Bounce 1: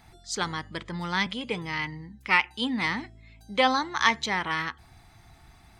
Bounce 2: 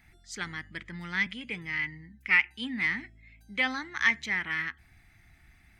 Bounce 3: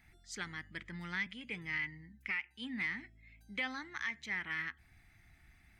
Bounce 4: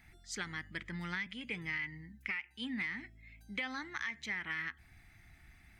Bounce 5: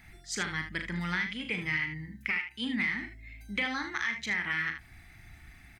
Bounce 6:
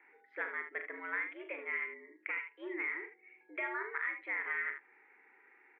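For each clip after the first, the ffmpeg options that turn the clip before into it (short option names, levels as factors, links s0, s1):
-af "equalizer=f=125:t=o:w=1:g=-4,equalizer=f=500:t=o:w=1:g=-9,equalizer=f=1000:t=o:w=1:g=-12,equalizer=f=2000:t=o:w=1:g=10,equalizer=f=4000:t=o:w=1:g=-8,equalizer=f=8000:t=o:w=1:g=-4,volume=0.668"
-af "alimiter=limit=0.075:level=0:latency=1:release=462,volume=0.596"
-af "acompressor=threshold=0.0126:ratio=6,volume=1.5"
-af "aecho=1:1:39|76:0.376|0.355,volume=2.11"
-af "highpass=f=290:t=q:w=0.5412,highpass=f=290:t=q:w=1.307,lowpass=f=2000:t=q:w=0.5176,lowpass=f=2000:t=q:w=0.7071,lowpass=f=2000:t=q:w=1.932,afreqshift=100,volume=0.708"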